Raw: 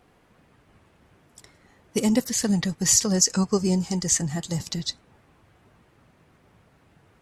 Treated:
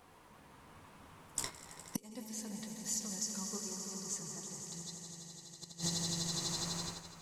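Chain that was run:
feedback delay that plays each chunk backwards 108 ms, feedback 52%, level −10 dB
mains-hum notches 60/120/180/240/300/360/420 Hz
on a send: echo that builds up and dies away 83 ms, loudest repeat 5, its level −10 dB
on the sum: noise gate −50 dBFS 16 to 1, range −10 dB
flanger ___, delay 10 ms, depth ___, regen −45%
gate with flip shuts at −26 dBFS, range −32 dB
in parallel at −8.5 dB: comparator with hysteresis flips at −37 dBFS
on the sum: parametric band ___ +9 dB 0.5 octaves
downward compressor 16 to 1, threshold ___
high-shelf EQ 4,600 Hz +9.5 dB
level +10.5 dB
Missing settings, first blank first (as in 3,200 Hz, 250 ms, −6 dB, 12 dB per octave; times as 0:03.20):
1 Hz, 5.7 ms, 1,000 Hz, −46 dBFS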